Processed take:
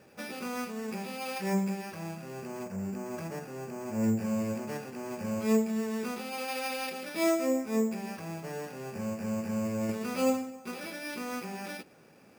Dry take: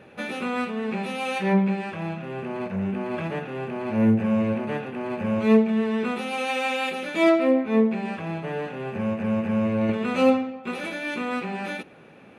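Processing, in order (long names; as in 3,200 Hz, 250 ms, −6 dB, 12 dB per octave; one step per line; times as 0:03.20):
0:02.63–0:04.04: high-shelf EQ 3,700 Hz −11 dB
bad sample-rate conversion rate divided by 6×, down none, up hold
level −8.5 dB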